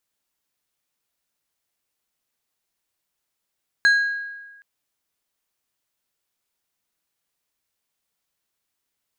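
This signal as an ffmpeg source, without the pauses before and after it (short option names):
-f lavfi -i "aevalsrc='0.282*pow(10,-3*t/1.26)*sin(2*PI*1640*t)+0.0794*pow(10,-3*t/0.663)*sin(2*PI*4100*t)+0.0224*pow(10,-3*t/0.477)*sin(2*PI*6560*t)+0.00631*pow(10,-3*t/0.408)*sin(2*PI*8200*t)+0.00178*pow(10,-3*t/0.34)*sin(2*PI*10660*t)':d=0.77:s=44100"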